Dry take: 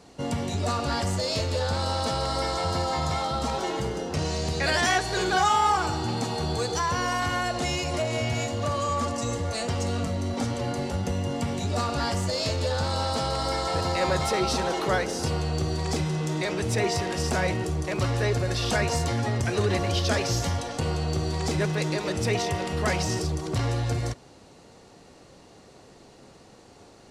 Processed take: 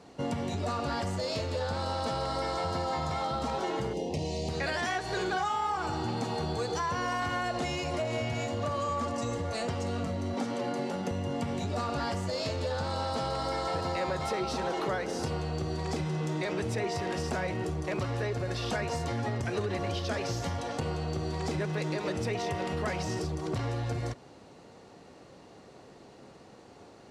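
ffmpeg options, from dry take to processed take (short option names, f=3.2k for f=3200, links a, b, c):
-filter_complex "[0:a]asettb=1/sr,asplit=3[a][b][c];[a]atrim=end=3.934[d];[b]atrim=start=3.93:end=4.49,asetpts=PTS-STARTPTS,afade=t=in:d=0.004:c=qsin,afade=t=out:st=0.556:d=0.004:c=qsin,asuperstop=centerf=1400:order=4:qfactor=1[e];[c]atrim=start=4.486[f];[d][e]acrossfade=d=0.004:c1=hsin:c2=qsin[g];[g][f]acrossfade=d=0.004:c1=qsin:c2=hsin,asettb=1/sr,asplit=3[h][i][j];[h]atrim=end=10.374[k];[i]atrim=start=10.37:end=11.11,asetpts=PTS-STARTPTS,afade=t=in:d=0.004:c=qsin,afade=t=out:st=0.736:d=0.004:c=qsin,highpass=f=160:w=0.5412,highpass=f=160:w=1.3066[l];[j]atrim=start=11.106[m];[k][l]acrossfade=d=0.004:c1=hsin:c2=qsin[n];[n][m]acrossfade=d=0.004:c1=qsin:c2=hsin,acompressor=threshold=-27dB:ratio=6,highpass=f=100:p=1,highshelf=f=4.1k:g=-9"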